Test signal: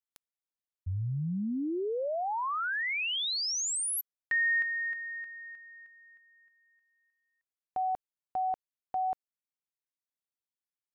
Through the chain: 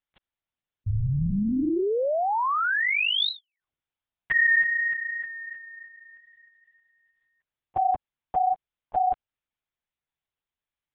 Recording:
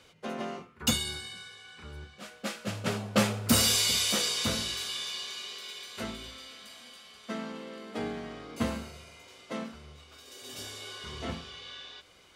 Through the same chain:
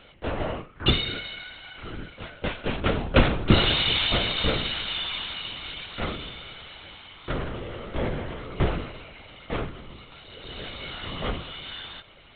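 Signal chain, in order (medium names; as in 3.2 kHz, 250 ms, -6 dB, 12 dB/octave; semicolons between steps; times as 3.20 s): LPC vocoder at 8 kHz whisper; trim +7.5 dB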